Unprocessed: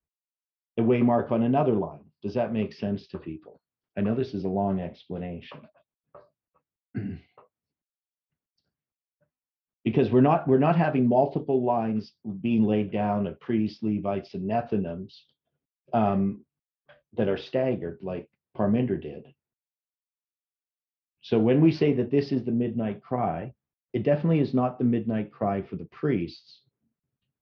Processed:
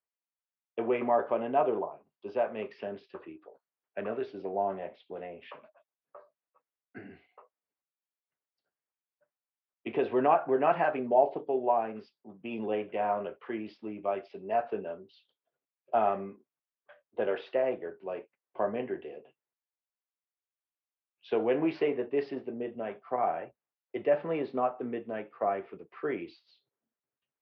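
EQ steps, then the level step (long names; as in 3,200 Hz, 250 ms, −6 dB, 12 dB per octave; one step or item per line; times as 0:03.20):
three-way crossover with the lows and the highs turned down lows −24 dB, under 390 Hz, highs −19 dB, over 2,800 Hz
0.0 dB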